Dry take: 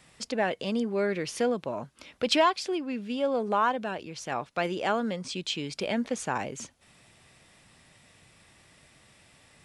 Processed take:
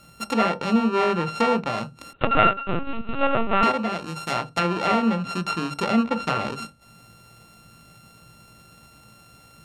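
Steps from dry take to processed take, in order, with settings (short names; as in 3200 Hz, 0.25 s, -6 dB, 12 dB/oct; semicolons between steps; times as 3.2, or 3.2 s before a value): sample sorter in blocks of 32 samples; on a send at -13 dB: reverb RT60 0.20 s, pre-delay 17 ms; 2.13–3.63 on the sum: LPC vocoder at 8 kHz pitch kept; notch 1600 Hz, Q 12; treble ducked by the level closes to 2600 Hz, closed at -25 dBFS; gain +6.5 dB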